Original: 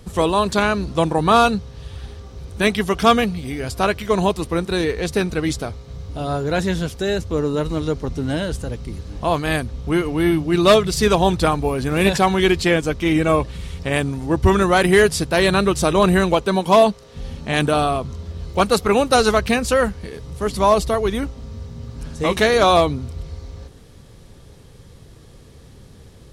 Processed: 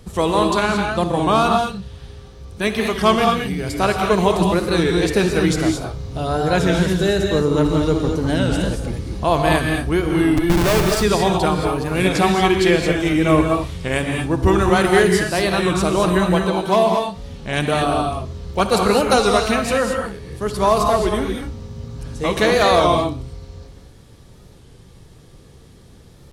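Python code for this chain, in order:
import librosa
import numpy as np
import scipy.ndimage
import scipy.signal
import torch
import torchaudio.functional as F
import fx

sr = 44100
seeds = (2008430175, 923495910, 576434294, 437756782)

p1 = fx.rider(x, sr, range_db=4, speed_s=2.0)
p2 = fx.schmitt(p1, sr, flips_db=-14.5, at=(10.37, 10.83))
p3 = p2 + fx.echo_feedback(p2, sr, ms=61, feedback_pct=35, wet_db=-17.0, dry=0)
p4 = fx.rev_gated(p3, sr, seeds[0], gate_ms=250, shape='rising', drr_db=2.0)
p5 = fx.record_warp(p4, sr, rpm=33.33, depth_cents=100.0)
y = F.gain(torch.from_numpy(p5), -1.5).numpy()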